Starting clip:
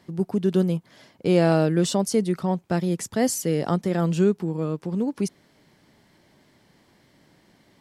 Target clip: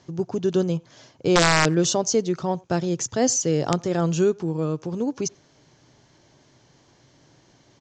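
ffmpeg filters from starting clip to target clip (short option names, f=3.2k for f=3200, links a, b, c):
-filter_complex "[0:a]equalizer=f=125:t=o:w=0.33:g=7,equalizer=f=200:t=o:w=0.33:g=-10,equalizer=f=2k:t=o:w=0.33:g=-6,equalizer=f=6.3k:t=o:w=0.33:g=10,aresample=16000,aeval=exprs='(mod(3.55*val(0)+1,2)-1)/3.55':c=same,aresample=44100,asplit=2[a][b];[b]adelay=90,highpass=300,lowpass=3.4k,asoftclip=type=hard:threshold=-16dB,volume=-26dB[c];[a][c]amix=inputs=2:normalize=0,volume=2dB"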